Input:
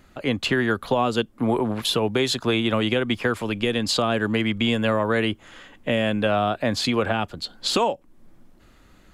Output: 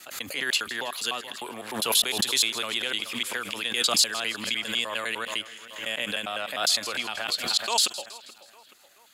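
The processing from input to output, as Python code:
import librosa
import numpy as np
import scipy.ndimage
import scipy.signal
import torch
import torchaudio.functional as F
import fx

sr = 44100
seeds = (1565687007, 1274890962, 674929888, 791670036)

y = fx.block_reorder(x, sr, ms=101.0, group=2)
y = np.diff(y, prepend=0.0)
y = fx.echo_split(y, sr, split_hz=2700.0, low_ms=428, high_ms=161, feedback_pct=52, wet_db=-16.0)
y = fx.pre_swell(y, sr, db_per_s=83.0)
y = y * 10.0 ** (7.5 / 20.0)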